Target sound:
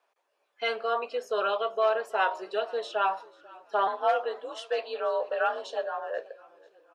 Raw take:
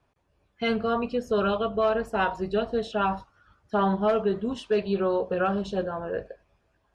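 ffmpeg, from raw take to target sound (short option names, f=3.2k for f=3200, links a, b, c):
-filter_complex "[0:a]highpass=f=480:w=0.5412,highpass=f=480:w=1.3066,asettb=1/sr,asplit=3[a][b][c];[a]atrim=end=3.874[d];[b]atrim=start=3.87:end=6.18,asetpts=PTS-STARTPTS,afade=t=in:d=0.004:c=qsin,afade=t=out:st=2.306:d=0.004:c=qsin,afreqshift=51[e];[c]atrim=start=6.176[f];[d][e]acrossfade=d=0.004:c1=hsin:c2=qsin[g];[g][f]acrossfade=d=0.004:c1=qsin:c2=hsin,asplit=4[h][i][j][k];[i]adelay=490,afreqshift=-34,volume=-23.5dB[l];[j]adelay=980,afreqshift=-68,volume=-29.9dB[m];[k]adelay=1470,afreqshift=-102,volume=-36.3dB[n];[h][l][m][n]amix=inputs=4:normalize=0"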